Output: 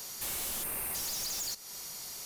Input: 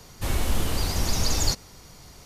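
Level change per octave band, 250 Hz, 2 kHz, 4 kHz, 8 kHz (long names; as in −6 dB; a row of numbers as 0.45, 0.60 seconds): −18.5, −9.0, −8.5, −3.5 decibels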